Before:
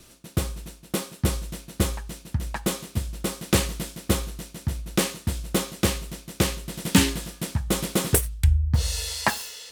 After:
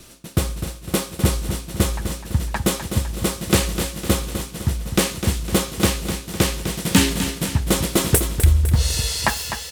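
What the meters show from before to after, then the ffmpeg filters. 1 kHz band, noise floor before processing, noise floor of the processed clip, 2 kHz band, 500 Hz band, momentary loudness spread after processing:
+4.5 dB, -51 dBFS, -38 dBFS, +4.5 dB, +5.0 dB, 8 LU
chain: -filter_complex "[0:a]asplit=2[a][b];[b]alimiter=limit=-13dB:level=0:latency=1:release=215,volume=2dB[c];[a][c]amix=inputs=2:normalize=0,aecho=1:1:253|506|759|1012|1265|1518:0.355|0.181|0.0923|0.0471|0.024|0.0122,volume=-1dB"

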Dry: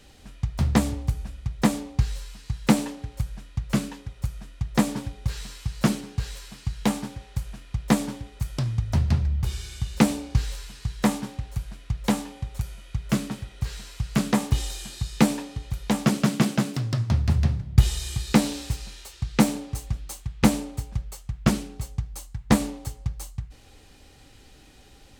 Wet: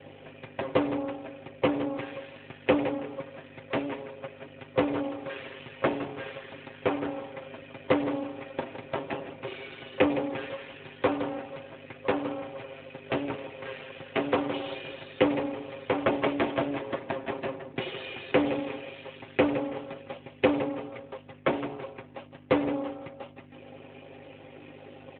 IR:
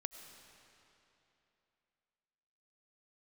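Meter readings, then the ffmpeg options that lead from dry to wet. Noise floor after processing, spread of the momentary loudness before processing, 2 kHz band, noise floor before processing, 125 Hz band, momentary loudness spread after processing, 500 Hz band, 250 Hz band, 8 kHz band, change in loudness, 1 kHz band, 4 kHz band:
-50 dBFS, 12 LU, 0.0 dB, -51 dBFS, -17.5 dB, 18 LU, +5.5 dB, -6.0 dB, under -40 dB, -4.0 dB, -0.5 dB, -6.0 dB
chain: -filter_complex "[0:a]highpass=f=310:w=0.5412,highpass=f=310:w=1.3066,equalizer=f=330:t=q:w=4:g=10,equalizer=f=530:t=q:w=4:g=10,equalizer=f=1.3k:t=q:w=4:g=-3,equalizer=f=2.5k:t=q:w=4:g=4,lowpass=f=3k:w=0.5412,lowpass=f=3k:w=1.3066,aeval=exprs='val(0)+0.00282*(sin(2*PI*50*n/s)+sin(2*PI*2*50*n/s)/2+sin(2*PI*3*50*n/s)/3+sin(2*PI*4*50*n/s)/4+sin(2*PI*5*50*n/s)/5)':c=same,aeval=exprs='max(val(0),0)':c=same,asplit=2[a][b];[b]acompressor=threshold=-36dB:ratio=12,volume=2dB[c];[a][c]amix=inputs=2:normalize=0,aecho=1:1:164|328|492:0.251|0.0728|0.0211,acrossover=split=830|950[d][e][f];[d]crystalizer=i=8.5:c=0[g];[f]acrusher=bits=5:mode=log:mix=0:aa=0.000001[h];[g][e][h]amix=inputs=3:normalize=0,asoftclip=type=tanh:threshold=-7.5dB,aecho=1:1:7.5:0.75" -ar 8000 -c:a libopencore_amrnb -b:a 12200

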